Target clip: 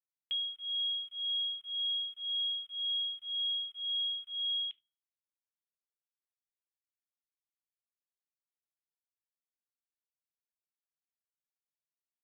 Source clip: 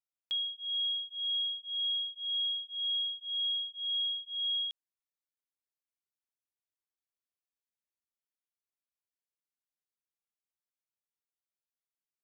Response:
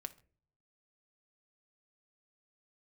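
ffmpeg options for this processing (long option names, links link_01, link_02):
-filter_complex "[0:a]aeval=exprs='val(0)*gte(abs(val(0)),0.00282)':channel_layout=same,firequalizer=gain_entry='entry(1400,0);entry(2100,9);entry(3000,11);entry(4600,-17)':delay=0.05:min_phase=1[link_01];[1:a]atrim=start_sample=2205,asetrate=83790,aresample=44100[link_02];[link_01][link_02]afir=irnorm=-1:irlink=0,volume=2.5dB"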